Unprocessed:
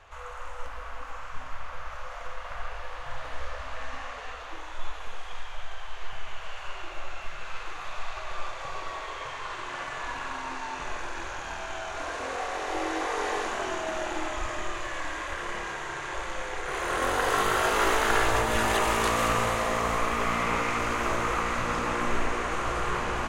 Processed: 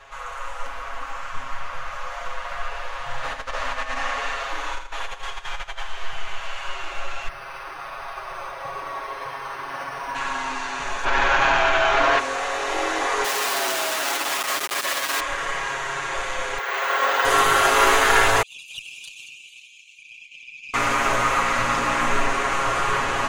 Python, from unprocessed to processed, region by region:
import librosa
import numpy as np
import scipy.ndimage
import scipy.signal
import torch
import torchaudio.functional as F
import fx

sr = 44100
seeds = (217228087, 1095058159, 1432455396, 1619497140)

y = fx.chain(x, sr, fx.over_compress(threshold_db=-32.0, ratio=-0.5),
    fx.echo_feedback(ms=82, feedback_pct=36, wet_db=-7.5), at=(3.23, 5.83))
y = fx.chain(y, sr, fx.highpass(hz=61.0, slope=6),
    fx.high_shelf(hz=2100.0, db=-8.0),
    fx.resample_linear(factor=6), at=(7.28, 10.15))
y = fx.lowpass(y, sr, hz=3600.0, slope=12, at=(11.04, 12.18), fade=0.02)
y = fx.dmg_crackle(y, sr, seeds[0], per_s=150.0, level_db=-65.0, at=(11.04, 12.18), fade=0.02)
y = fx.env_flatten(y, sr, amount_pct=70, at=(11.04, 12.18), fade=0.02)
y = fx.chain(y, sr, fx.clip_1bit(),
    fx.highpass(hz=290.0, slope=12), at=(13.24, 15.2))
y = fx.chain(y, sr, fx.bandpass_edges(low_hz=500.0, high_hz=5100.0),
    fx.resample_bad(factor=2, down='filtered', up='hold'), at=(16.58, 17.25))
y = fx.chain(y, sr, fx.envelope_sharpen(power=2.0),
    fx.cheby1_highpass(hz=2400.0, order=10),
    fx.tube_stage(drive_db=31.0, bias=0.45), at=(18.42, 20.74))
y = fx.low_shelf(y, sr, hz=490.0, db=-7.0)
y = y + 0.85 * np.pad(y, (int(7.3 * sr / 1000.0), 0))[:len(y)]
y = F.gain(torch.from_numpy(y), 6.5).numpy()